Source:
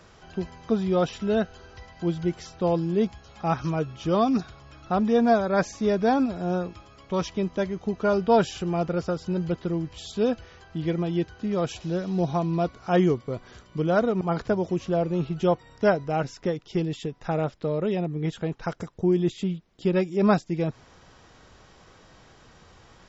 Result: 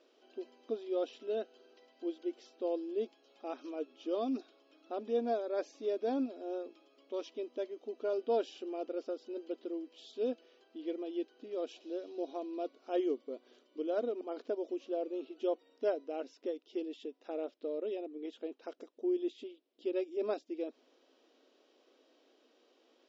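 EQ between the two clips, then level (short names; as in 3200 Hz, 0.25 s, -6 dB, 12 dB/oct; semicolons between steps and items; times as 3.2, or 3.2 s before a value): brick-wall FIR high-pass 240 Hz; air absorption 160 m; band shelf 1300 Hz -11 dB; -9.0 dB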